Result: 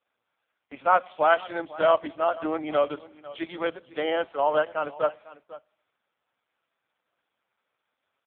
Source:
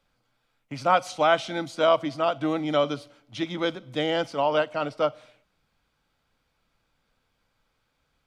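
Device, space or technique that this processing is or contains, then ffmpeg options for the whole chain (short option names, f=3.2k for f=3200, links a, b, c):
satellite phone: -af "highpass=390,lowpass=3.3k,aecho=1:1:499:0.119,volume=1.5dB" -ar 8000 -c:a libopencore_amrnb -b:a 4750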